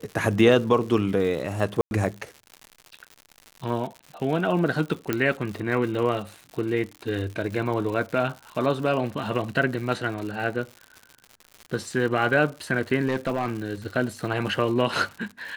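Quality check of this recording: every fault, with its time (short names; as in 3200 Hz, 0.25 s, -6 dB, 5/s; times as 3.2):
crackle 150/s -33 dBFS
1.81–1.91 gap 0.101 s
5.13 pop -10 dBFS
13.07–13.48 clipped -19.5 dBFS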